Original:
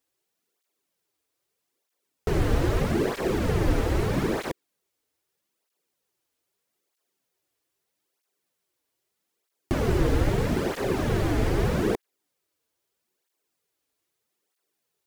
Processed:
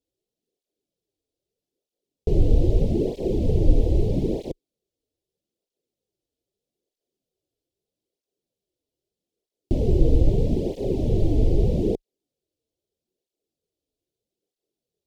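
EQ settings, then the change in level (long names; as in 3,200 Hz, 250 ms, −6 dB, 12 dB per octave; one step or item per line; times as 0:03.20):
Chebyshev band-stop filter 520–3,600 Hz, order 2
spectral tilt −4 dB per octave
low-shelf EQ 340 Hz −11 dB
+1.0 dB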